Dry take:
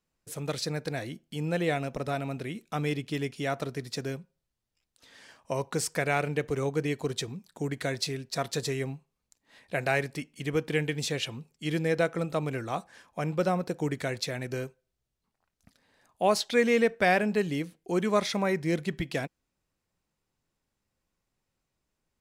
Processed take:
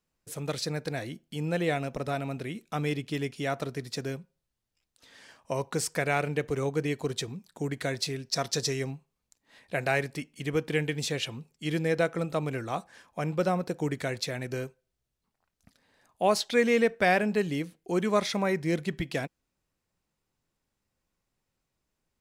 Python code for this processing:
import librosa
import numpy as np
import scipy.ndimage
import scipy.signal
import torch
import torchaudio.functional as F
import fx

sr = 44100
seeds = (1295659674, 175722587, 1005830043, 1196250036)

y = fx.peak_eq(x, sr, hz=5500.0, db=10.0, octaves=0.53, at=(8.23, 8.91))